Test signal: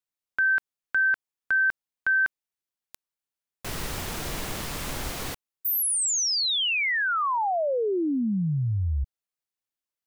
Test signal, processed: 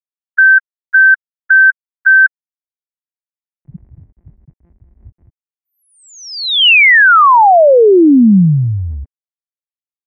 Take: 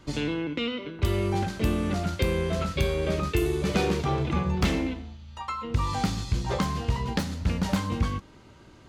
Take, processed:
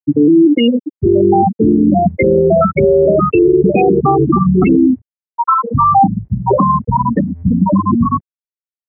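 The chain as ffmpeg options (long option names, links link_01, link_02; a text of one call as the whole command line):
ffmpeg -i in.wav -af "afftfilt=real='re*gte(hypot(re,im),0.158)':imag='im*gte(hypot(re,im),0.158)':win_size=1024:overlap=0.75,highpass=290,equalizer=frequency=490:width_type=q:width=4:gain=-7,equalizer=frequency=1300:width_type=q:width=4:gain=-5,equalizer=frequency=2000:width_type=q:width=4:gain=5,lowpass=frequency=2300:width=0.5412,lowpass=frequency=2300:width=1.3066,alimiter=level_in=29.5dB:limit=-1dB:release=50:level=0:latency=1,volume=-2dB" out.wav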